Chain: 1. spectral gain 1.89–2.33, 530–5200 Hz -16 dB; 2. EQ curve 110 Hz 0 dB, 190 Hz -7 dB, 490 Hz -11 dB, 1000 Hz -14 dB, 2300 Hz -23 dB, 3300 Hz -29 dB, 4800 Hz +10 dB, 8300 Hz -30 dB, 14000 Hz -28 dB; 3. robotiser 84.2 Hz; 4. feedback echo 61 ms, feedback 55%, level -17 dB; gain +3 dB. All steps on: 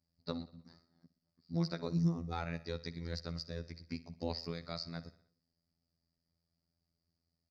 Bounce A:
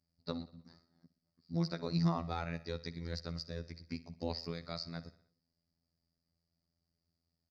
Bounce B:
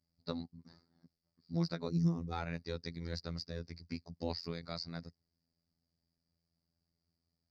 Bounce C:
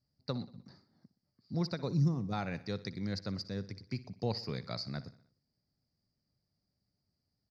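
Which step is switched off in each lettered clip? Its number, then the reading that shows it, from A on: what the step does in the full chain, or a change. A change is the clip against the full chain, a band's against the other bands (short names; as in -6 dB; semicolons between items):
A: 1, 1 kHz band +2.5 dB; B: 4, echo-to-direct -15.5 dB to none; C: 3, crest factor change -3.5 dB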